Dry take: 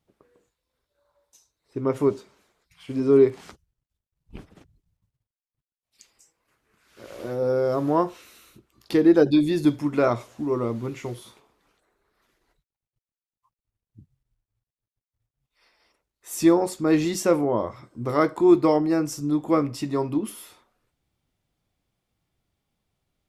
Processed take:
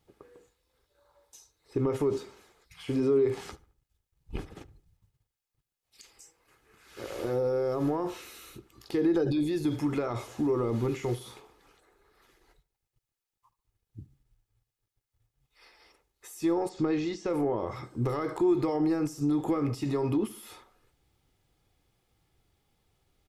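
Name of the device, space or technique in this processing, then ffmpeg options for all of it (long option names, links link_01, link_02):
de-esser from a sidechain: -filter_complex "[0:a]asplit=2[link_01][link_02];[link_02]highpass=frequency=6800:poles=1,apad=whole_len=1026866[link_03];[link_01][link_03]sidechaincompress=threshold=-55dB:ratio=5:attack=4.5:release=34,asettb=1/sr,asplit=3[link_04][link_05][link_06];[link_04]atrim=end=16.694[link_07];[link_05]atrim=start=16.69:end=17.3,asetpts=PTS-STARTPTS,afade=type=in:duration=0.004:curve=qsin,afade=type=out:start_time=0.606:duration=0.004:curve=qsin,lowpass=frequency=6100:width=0.5412,lowpass=frequency=6100:width=1.3066[link_08];[link_06]atrim=start=17.296[link_09];[link_07][link_08]acrossfade=duration=0.004:curve1=hsin:curve2=qsin[link_10];[link_10][link_09]acrossfade=duration=0.004:curve1=qsin:curve2=hsin,aecho=1:1:2.4:0.36,asplit=2[link_11][link_12];[link_12]adelay=72,lowpass=frequency=2400:poles=1,volume=-19dB,asplit=2[link_13][link_14];[link_14]adelay=72,lowpass=frequency=2400:poles=1,volume=0.42,asplit=2[link_15][link_16];[link_16]adelay=72,lowpass=frequency=2400:poles=1,volume=0.42[link_17];[link_11][link_13][link_15][link_17]amix=inputs=4:normalize=0,volume=5dB"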